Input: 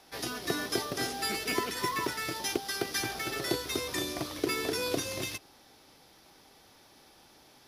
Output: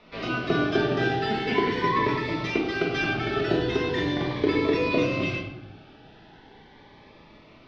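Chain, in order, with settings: low-pass 3.2 kHz 24 dB/octave; simulated room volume 260 m³, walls mixed, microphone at 1.4 m; Shepard-style phaser rising 0.4 Hz; trim +6.5 dB

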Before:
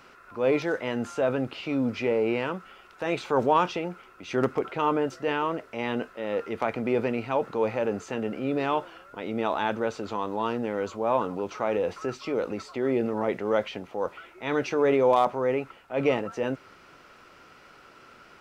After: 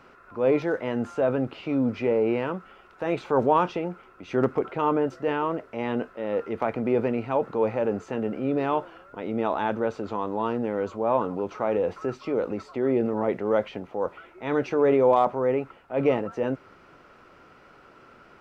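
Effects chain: treble shelf 2.2 kHz -12 dB; trim +2.5 dB

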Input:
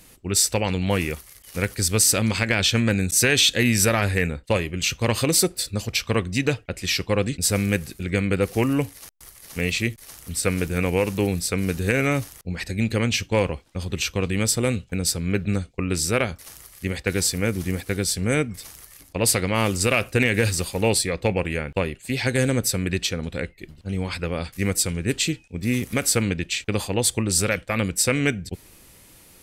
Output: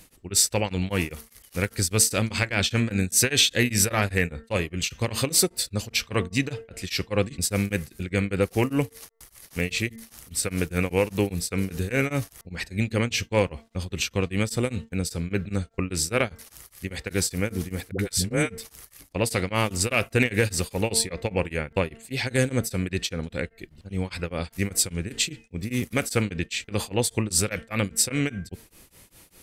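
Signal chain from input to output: de-hum 226.4 Hz, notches 9; 17.91–18.58 s: phase dispersion highs, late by 79 ms, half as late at 440 Hz; tremolo of two beating tones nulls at 5 Hz

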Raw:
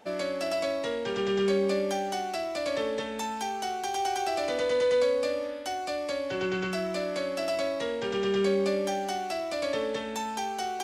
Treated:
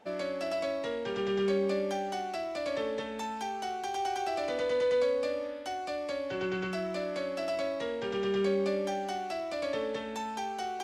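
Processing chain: treble shelf 5.7 kHz -8.5 dB; trim -3 dB

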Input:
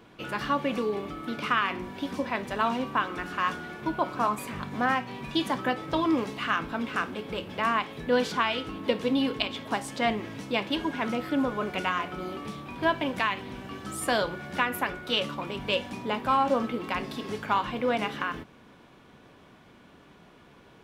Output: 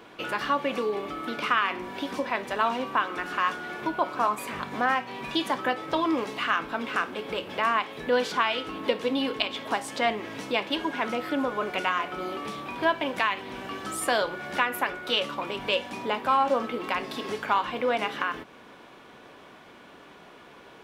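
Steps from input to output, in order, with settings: tone controls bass -12 dB, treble -2 dB; in parallel at +2 dB: compression, threshold -39 dBFS, peak gain reduction 18 dB

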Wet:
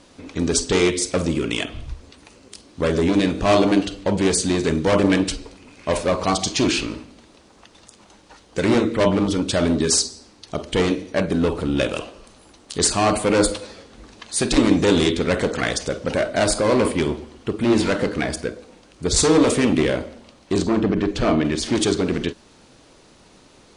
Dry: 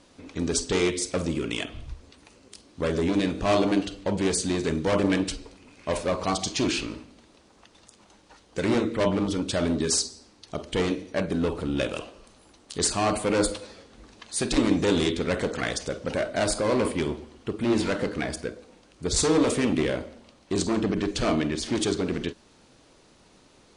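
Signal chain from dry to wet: 20.58–21.45 s: low-pass 2.3 kHz 6 dB/octave; trim +6 dB

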